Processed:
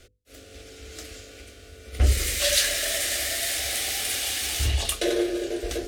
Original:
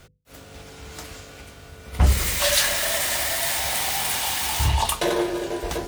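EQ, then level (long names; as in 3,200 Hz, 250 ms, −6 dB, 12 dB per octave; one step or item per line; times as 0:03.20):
Bessel low-pass filter 12,000 Hz, order 2
phaser with its sweep stopped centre 390 Hz, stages 4
0.0 dB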